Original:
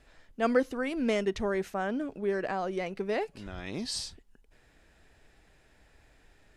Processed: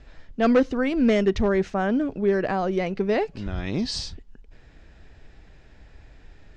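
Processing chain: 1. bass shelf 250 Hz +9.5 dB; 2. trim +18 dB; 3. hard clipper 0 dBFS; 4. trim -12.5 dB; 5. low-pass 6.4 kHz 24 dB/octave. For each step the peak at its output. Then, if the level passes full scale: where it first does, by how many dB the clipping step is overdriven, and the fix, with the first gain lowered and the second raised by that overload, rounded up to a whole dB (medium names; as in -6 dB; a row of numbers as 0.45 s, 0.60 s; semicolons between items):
-11.0 dBFS, +7.0 dBFS, 0.0 dBFS, -12.5 dBFS, -12.0 dBFS; step 2, 7.0 dB; step 2 +11 dB, step 4 -5.5 dB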